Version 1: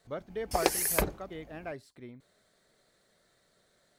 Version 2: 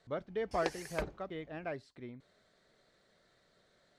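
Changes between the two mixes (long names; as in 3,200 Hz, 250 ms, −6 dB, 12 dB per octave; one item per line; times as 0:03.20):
background −10.0 dB
master: add low-pass filter 5,300 Hz 12 dB per octave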